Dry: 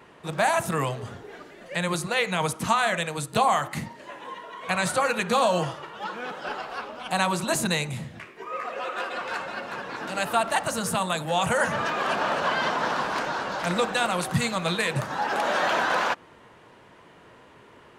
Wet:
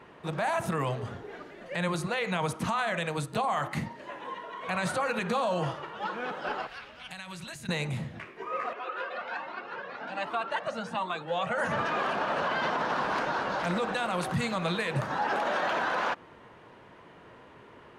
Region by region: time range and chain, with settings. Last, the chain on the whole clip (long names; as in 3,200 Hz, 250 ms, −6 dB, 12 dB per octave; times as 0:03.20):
0:06.67–0:07.69: flat-topped bell 500 Hz −13.5 dB 3 octaves + downward compressor 8 to 1, threshold −35 dBFS
0:08.73–0:11.58: band-pass filter 220–4,300 Hz + flanger whose copies keep moving one way rising 1.3 Hz
whole clip: high-shelf EQ 5,100 Hz −11 dB; notch filter 7,500 Hz, Q 28; brickwall limiter −20.5 dBFS